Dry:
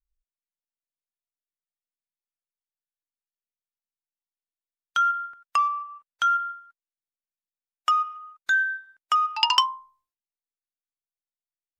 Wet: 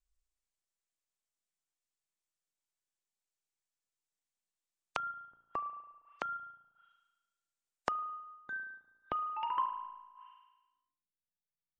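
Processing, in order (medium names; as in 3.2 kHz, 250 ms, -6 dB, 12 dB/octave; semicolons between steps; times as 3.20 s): low-pass sweep 7.9 kHz -> 170 Hz, 8.60–11.19 s; spring tank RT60 1.1 s, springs 35 ms, chirp 45 ms, DRR 6 dB; low-pass that closes with the level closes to 510 Hz, closed at -35.5 dBFS; trim -1 dB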